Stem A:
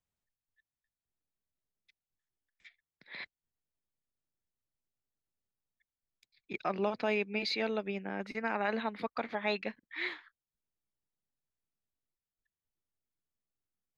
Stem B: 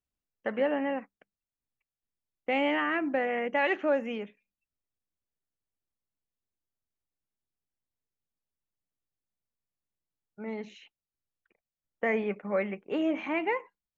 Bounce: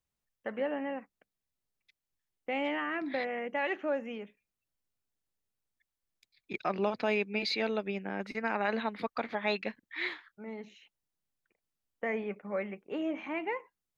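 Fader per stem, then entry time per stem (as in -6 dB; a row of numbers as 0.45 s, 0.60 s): +1.5 dB, -5.5 dB; 0.00 s, 0.00 s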